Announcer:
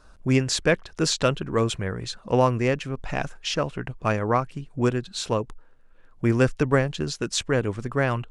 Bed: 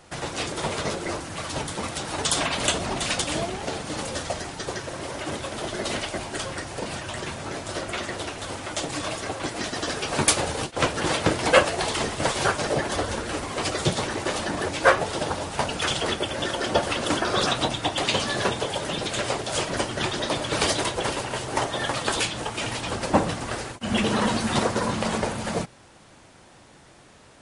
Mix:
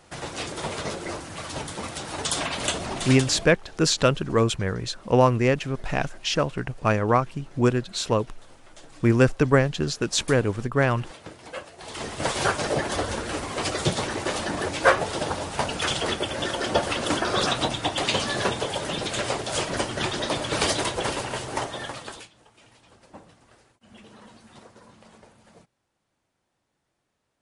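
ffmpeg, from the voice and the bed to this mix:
-filter_complex "[0:a]adelay=2800,volume=1.26[s0];[1:a]volume=6.68,afade=t=out:st=3.07:d=0.48:silence=0.141254,afade=t=in:st=11.78:d=0.59:silence=0.105925,afade=t=out:st=21.28:d=1.01:silence=0.0530884[s1];[s0][s1]amix=inputs=2:normalize=0"

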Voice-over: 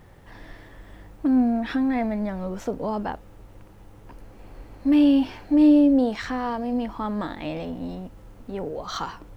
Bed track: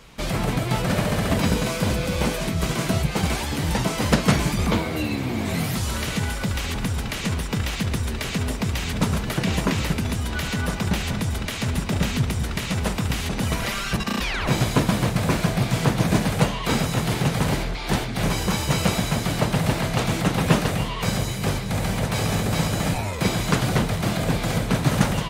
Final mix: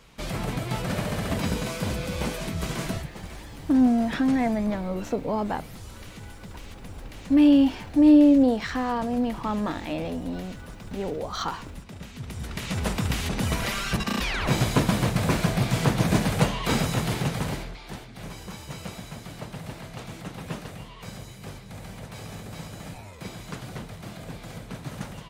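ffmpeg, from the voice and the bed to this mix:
-filter_complex "[0:a]adelay=2450,volume=1.06[s0];[1:a]volume=3.16,afade=t=out:st=2.85:d=0.26:silence=0.251189,afade=t=in:st=12.15:d=0.8:silence=0.158489,afade=t=out:st=16.88:d=1.05:silence=0.199526[s1];[s0][s1]amix=inputs=2:normalize=0"

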